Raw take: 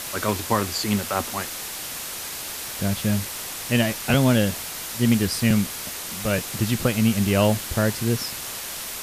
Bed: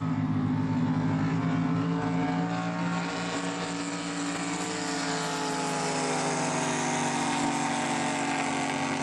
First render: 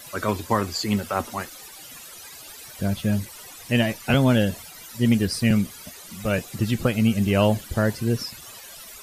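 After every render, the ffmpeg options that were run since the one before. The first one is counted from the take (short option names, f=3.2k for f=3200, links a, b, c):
-af "afftdn=nr=15:nf=-33"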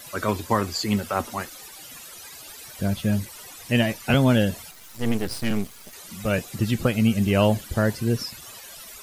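-filter_complex "[0:a]asettb=1/sr,asplit=3[a][b][c];[a]atrim=end=4.714[d];[b]atrim=start=4.71:end=5.93,asetpts=PTS-STARTPTS,afade=t=in:d=0.004:c=qsin,afade=t=out:st=1.216:d=0.004:c=qsin,aeval=exprs='max(val(0),0)':c=same[e];[c]atrim=start=5.926[f];[d][e]acrossfade=d=0.004:c1=hsin:c2=qsin[g];[g][f]acrossfade=d=0.004:c1=qsin:c2=hsin"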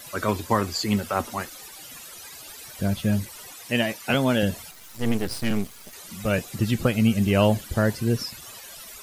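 -filter_complex "[0:a]asettb=1/sr,asplit=3[a][b][c];[a]atrim=end=3.534[d];[b]atrim=start=3.53:end=4.43,asetpts=PTS-STARTPTS,afade=t=in:d=0.004:c=qsin,afade=t=out:st=0.896:d=0.004:c=qsin,highpass=f=280:p=1[e];[c]atrim=start=4.426[f];[d][e]acrossfade=d=0.004:c1=hsin:c2=qsin[g];[g][f]acrossfade=d=0.004:c1=qsin:c2=hsin"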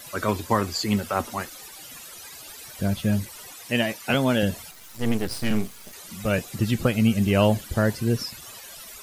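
-filter_complex "[0:a]asettb=1/sr,asplit=3[a][b][c];[a]atrim=end=5.364[d];[b]atrim=start=5.36:end=5.92,asetpts=PTS-STARTPTS,afade=t=in:d=0.004:c=qsin,afade=t=out:st=0.556:d=0.004:c=qsin,asplit=2[e][f];[f]adelay=37,volume=-10.5dB[g];[e][g]amix=inputs=2:normalize=0,atrim=end_sample=24696[h];[c]atrim=start=5.916[i];[d][h]acrossfade=d=0.004:c1=hsin:c2=qsin[j];[j][i]acrossfade=d=0.004:c1=qsin:c2=hsin"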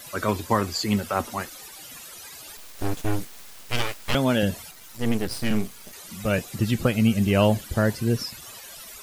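-filter_complex "[0:a]asettb=1/sr,asplit=3[a][b][c];[a]atrim=end=2.574[d];[b]atrim=start=2.57:end=4.15,asetpts=PTS-STARTPTS,afade=t=in:d=0.004:c=qsin,afade=t=out:st=1.576:d=0.004:c=qsin,aeval=exprs='abs(val(0))':c=same[e];[c]atrim=start=4.146[f];[d][e]acrossfade=d=0.004:c1=hsin:c2=qsin[g];[g][f]acrossfade=d=0.004:c1=qsin:c2=hsin"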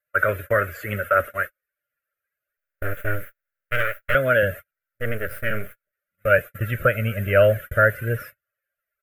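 -af "agate=range=-44dB:threshold=-32dB:ratio=16:detection=peak,firequalizer=gain_entry='entry(120,0);entry(210,-13);entry(340,-8);entry(590,11);entry(840,-26);entry(1400,15);entry(4500,-26);entry(13000,3)':delay=0.05:min_phase=1"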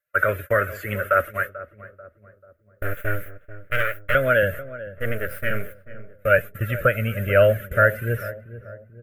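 -filter_complex "[0:a]asplit=2[a][b];[b]adelay=439,lowpass=f=980:p=1,volume=-14dB,asplit=2[c][d];[d]adelay=439,lowpass=f=980:p=1,volume=0.51,asplit=2[e][f];[f]adelay=439,lowpass=f=980:p=1,volume=0.51,asplit=2[g][h];[h]adelay=439,lowpass=f=980:p=1,volume=0.51,asplit=2[i][j];[j]adelay=439,lowpass=f=980:p=1,volume=0.51[k];[a][c][e][g][i][k]amix=inputs=6:normalize=0"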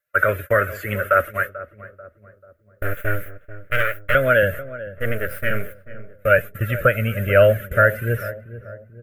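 -af "volume=2.5dB,alimiter=limit=-3dB:level=0:latency=1"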